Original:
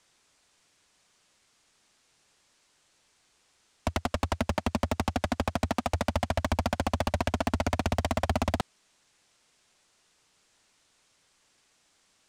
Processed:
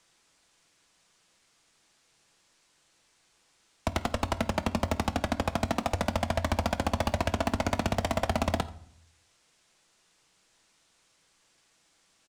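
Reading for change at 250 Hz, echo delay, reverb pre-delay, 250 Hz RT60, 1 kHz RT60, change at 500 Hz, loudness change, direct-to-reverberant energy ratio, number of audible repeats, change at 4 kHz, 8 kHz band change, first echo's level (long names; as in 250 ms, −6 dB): 0.0 dB, 86 ms, 6 ms, 0.80 s, 0.60 s, +0.5 dB, 0.0 dB, 10.5 dB, 1, +0.5 dB, +0.5 dB, −22.0 dB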